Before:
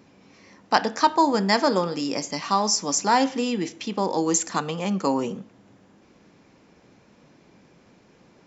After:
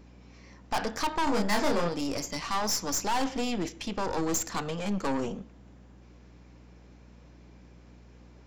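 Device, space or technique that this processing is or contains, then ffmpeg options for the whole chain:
valve amplifier with mains hum: -filter_complex "[0:a]aeval=exprs='(tanh(17.8*val(0)+0.65)-tanh(0.65))/17.8':c=same,aeval=exprs='val(0)+0.00251*(sin(2*PI*60*n/s)+sin(2*PI*2*60*n/s)/2+sin(2*PI*3*60*n/s)/3+sin(2*PI*4*60*n/s)/4+sin(2*PI*5*60*n/s)/5)':c=same,asettb=1/sr,asplit=3[a][b][c];[a]atrim=end=1.244[d];[b]atrim=start=1.24:end=1.89,asetpts=PTS-STARTPTS,afade=t=in:d=0.004:c=qsin,afade=t=out:st=0.646:d=0.004:c=qsin,asplit=2[e][f];[f]adelay=29,volume=-3dB[g];[e][g]amix=inputs=2:normalize=0,atrim=end_sample=28665[h];[c]atrim=start=1.886[i];[d][h]acrossfade=d=0.004:c1=hsin:c2=qsin[j];[j][i]acrossfade=d=0.004:c1=qsin:c2=hsin"

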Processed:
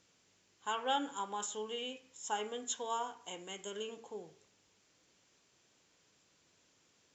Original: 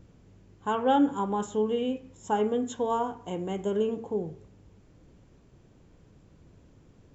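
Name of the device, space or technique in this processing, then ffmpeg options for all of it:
piezo pickup straight into a mixer: -filter_complex "[0:a]lowpass=6.5k,aderivative,asettb=1/sr,asplit=3[a][b][c];[a]atrim=end=3.424[d];[b]atrim=start=3.42:end=3.9,asetpts=PTS-STARTPTS,afade=t=in:d=0.004:c=qsin,afade=t=out:st=0.476:d=0.004:c=qsin,equalizer=f=780:t=o:w=0.77:g=-5.5[e];[c]atrim=start=3.896[f];[d][e]acrossfade=d=0.004:c1=hsin:c2=qsin[g];[g][f]acrossfade=d=0.004:c1=qsin:c2=hsin,volume=9.5dB"

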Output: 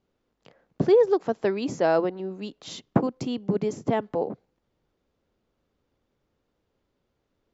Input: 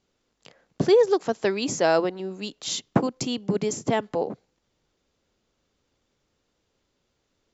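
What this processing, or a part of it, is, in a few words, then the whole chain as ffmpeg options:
through cloth: -af "lowpass=6.6k,highshelf=f=2.2k:g=-11.5"

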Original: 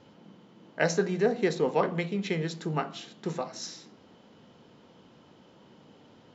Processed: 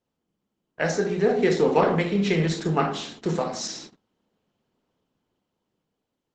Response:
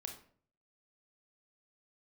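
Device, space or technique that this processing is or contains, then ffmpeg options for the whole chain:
speakerphone in a meeting room: -filter_complex "[0:a]asettb=1/sr,asplit=3[a][b][c];[a]atrim=end=0.874[d];[b]atrim=start=0.87:end=1.54,asetpts=PTS-STARTPTS,afade=t=in:d=0.004:c=qsin,afade=t=out:st=0.666:d=0.004:c=qsin,bandreject=f=1.1k:w=8.8[e];[c]atrim=start=1.536[f];[d][e]acrossfade=d=0.004:c1=hsin:c2=qsin[g];[g][f]acrossfade=d=0.004:c1=qsin:c2=hsin[h];[1:a]atrim=start_sample=2205[i];[h][i]afir=irnorm=-1:irlink=0,dynaudnorm=f=380:g=7:m=7.5dB,agate=range=-27dB:threshold=-45dB:ratio=16:detection=peak,volume=3.5dB" -ar 48000 -c:a libopus -b:a 12k

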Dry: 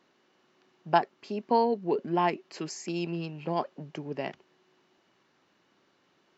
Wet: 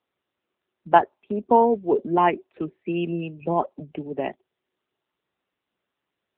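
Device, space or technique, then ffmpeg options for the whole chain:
mobile call with aggressive noise cancelling: -filter_complex "[0:a]asplit=3[a][b][c];[a]afade=t=out:st=0.9:d=0.02[d];[b]adynamicequalizer=threshold=0.00501:dfrequency=140:dqfactor=2.2:tfrequency=140:tqfactor=2.2:attack=5:release=100:ratio=0.375:range=1.5:mode=cutabove:tftype=bell,afade=t=in:st=0.9:d=0.02,afade=t=out:st=2.44:d=0.02[e];[c]afade=t=in:st=2.44:d=0.02[f];[d][e][f]amix=inputs=3:normalize=0,highpass=f=160:w=0.5412,highpass=f=160:w=1.3066,afftdn=nr=23:nf=-40,volume=8dB" -ar 8000 -c:a libopencore_amrnb -b:a 7950

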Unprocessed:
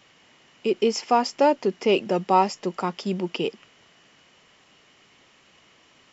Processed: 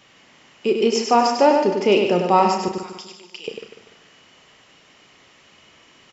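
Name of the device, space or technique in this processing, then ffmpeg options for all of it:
slapback doubling: -filter_complex "[0:a]asettb=1/sr,asplit=3[a][b][c];[a]atrim=end=2.684[d];[b]atrim=start=2.68:end=3.48,asetpts=PTS-STARTPTS,afade=t=in:d=0.004:c=qsin,afade=t=out:st=0.796:d=0.004:c=qsin,aderivative[e];[c]atrim=start=3.476[f];[d][e]acrossfade=d=0.004:c1=hsin:c2=qsin[g];[g][f]acrossfade=d=0.004:c1=qsin:c2=hsin,aecho=1:1:147|294|441|588:0.316|0.12|0.0457|0.0174,asplit=3[h][i][j];[i]adelay=34,volume=-9dB[k];[j]adelay=98,volume=-5dB[l];[h][k][l]amix=inputs=3:normalize=0,volume=3dB"

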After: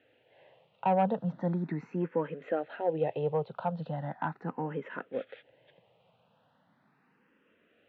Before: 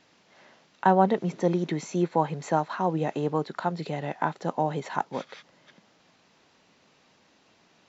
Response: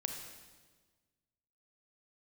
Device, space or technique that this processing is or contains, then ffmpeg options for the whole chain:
barber-pole phaser into a guitar amplifier: -filter_complex "[0:a]asplit=2[a][b];[b]afreqshift=0.38[c];[a][c]amix=inputs=2:normalize=1,asoftclip=type=tanh:threshold=-16.5dB,highpass=76,equalizer=f=120:t=q:w=4:g=7,equalizer=f=350:t=q:w=4:g=-4,equalizer=f=500:t=q:w=4:g=7,equalizer=f=1.1k:t=q:w=4:g=-5,equalizer=f=2.2k:t=q:w=4:g=-8,lowpass=f=3.8k:w=0.5412,lowpass=f=3.8k:w=1.3066,asettb=1/sr,asplit=3[d][e][f];[d]atrim=end=1.104[g];[e]atrim=start=1.1:end=2,asetpts=PTS-STARTPTS,afade=t=in:d=0.004:c=qsin,afade=t=out:st=0.896:d=0.004:c=qsin,bandreject=f=3.1k:w=12[h];[f]atrim=start=1.996[i];[g][h]acrossfade=d=0.004:c1=hsin:c2=qsin[j];[j][i]acrossfade=d=0.004:c1=qsin:c2=hsin,highshelf=f=3.5k:t=q:w=1.5:g=-9.5,volume=-2.5dB"

